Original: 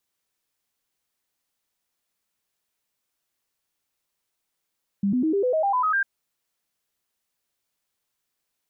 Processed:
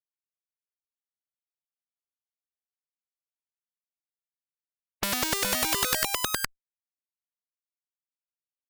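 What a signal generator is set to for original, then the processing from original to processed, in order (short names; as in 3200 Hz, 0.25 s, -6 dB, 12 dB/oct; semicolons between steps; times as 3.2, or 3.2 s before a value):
stepped sine 199 Hz up, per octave 3, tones 10, 0.10 s, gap 0.00 s -19 dBFS
fuzz box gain 47 dB, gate -49 dBFS; on a send: echo 0.416 s -5 dB; on the sum: spectral compressor 4:1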